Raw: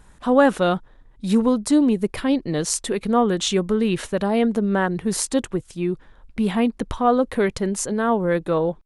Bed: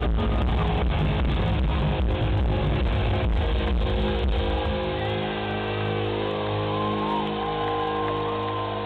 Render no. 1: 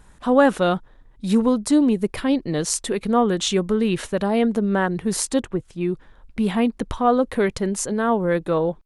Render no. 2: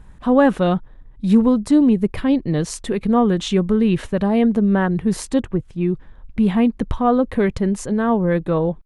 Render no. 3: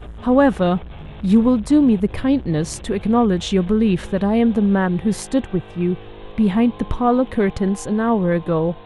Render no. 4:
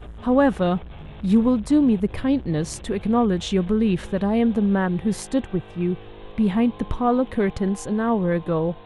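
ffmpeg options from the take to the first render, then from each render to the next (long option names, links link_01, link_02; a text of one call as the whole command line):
ffmpeg -i in.wav -filter_complex "[0:a]asettb=1/sr,asplit=3[link_01][link_02][link_03];[link_01]atrim=end=5.404[link_04];[link_02]atrim=start=5.4:end=5.81,asetpts=PTS-STARTPTS,afade=type=in:duration=0.004:curve=qsin,afade=type=out:start_time=0.406:duration=0.004:curve=qsin,highshelf=frequency=3900:gain=-12[link_05];[link_03]atrim=start=5.806[link_06];[link_04][link_05]acrossfade=duration=0.004:curve1=hsin:curve2=qsin[link_07];[link_07][link_06]acrossfade=duration=0.004:curve1=qsin:curve2=hsin" out.wav
ffmpeg -i in.wav -af "bass=frequency=250:gain=8,treble=frequency=4000:gain=-8,bandreject=frequency=1400:width=22" out.wav
ffmpeg -i in.wav -i bed.wav -filter_complex "[1:a]volume=-13dB[link_01];[0:a][link_01]amix=inputs=2:normalize=0" out.wav
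ffmpeg -i in.wav -af "volume=-3.5dB" out.wav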